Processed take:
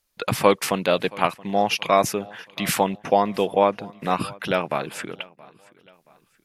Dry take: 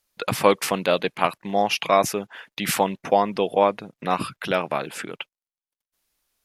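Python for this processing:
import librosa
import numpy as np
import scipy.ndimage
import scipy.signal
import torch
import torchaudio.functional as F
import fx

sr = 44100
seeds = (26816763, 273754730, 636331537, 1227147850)

y = fx.low_shelf(x, sr, hz=130.0, db=5.5)
y = fx.echo_feedback(y, sr, ms=675, feedback_pct=39, wet_db=-23.0)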